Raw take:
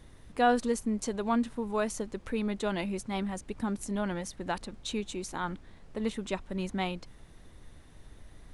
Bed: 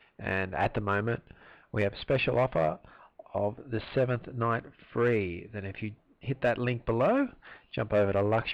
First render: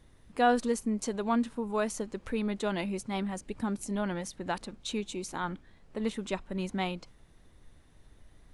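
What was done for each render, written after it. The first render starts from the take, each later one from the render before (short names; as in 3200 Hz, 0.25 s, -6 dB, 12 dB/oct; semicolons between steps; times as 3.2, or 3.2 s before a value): noise print and reduce 6 dB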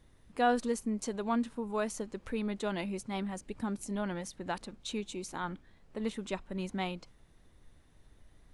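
gain -3 dB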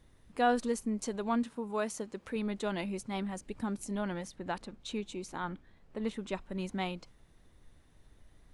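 1.43–2.36 HPF 140 Hz 6 dB/oct; 4.25–6.35 high shelf 4600 Hz -6 dB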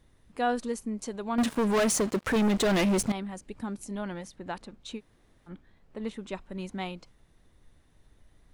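1.38–3.12 sample leveller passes 5; 4.98–5.49 room tone, crossfade 0.06 s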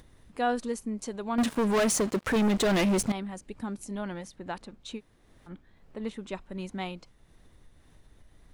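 upward compressor, threshold -48 dBFS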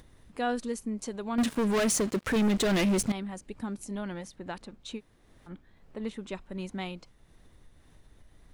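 dynamic EQ 830 Hz, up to -4 dB, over -39 dBFS, Q 0.89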